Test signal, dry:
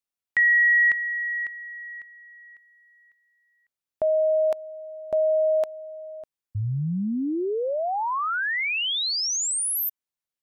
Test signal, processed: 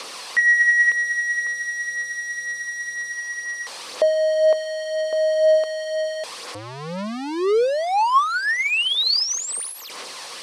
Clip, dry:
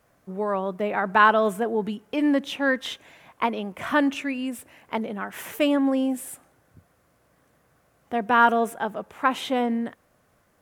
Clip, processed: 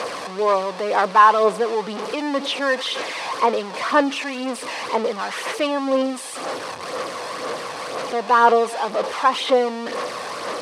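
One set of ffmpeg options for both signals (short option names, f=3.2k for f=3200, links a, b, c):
-af "aeval=exprs='val(0)+0.5*0.0708*sgn(val(0))':c=same,highpass=370,equalizer=f=490:t=q:w=4:g=8,equalizer=f=1.1k:t=q:w=4:g=7,equalizer=f=1.5k:t=q:w=4:g=-3,equalizer=f=4.5k:t=q:w=4:g=4,equalizer=f=7.1k:t=q:w=4:g=-7,lowpass=f=8.4k:w=0.5412,lowpass=f=8.4k:w=1.3066,aphaser=in_gain=1:out_gain=1:delay=1.2:decay=0.38:speed=2:type=sinusoidal,volume=-1dB"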